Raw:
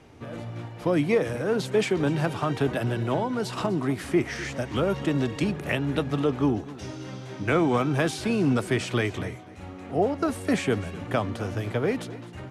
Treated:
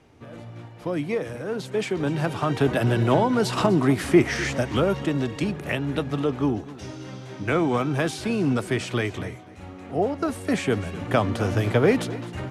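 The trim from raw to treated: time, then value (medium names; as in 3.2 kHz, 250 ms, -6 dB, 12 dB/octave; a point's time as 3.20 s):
1.63 s -4 dB
3.01 s +6.5 dB
4.50 s +6.5 dB
5.15 s 0 dB
10.49 s 0 dB
11.52 s +7 dB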